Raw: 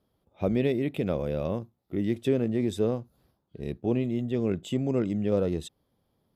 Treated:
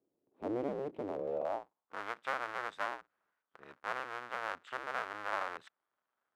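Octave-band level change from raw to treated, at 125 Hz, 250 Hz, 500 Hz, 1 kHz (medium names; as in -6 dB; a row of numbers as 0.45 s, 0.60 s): -26.0 dB, -19.0 dB, -11.5 dB, +5.5 dB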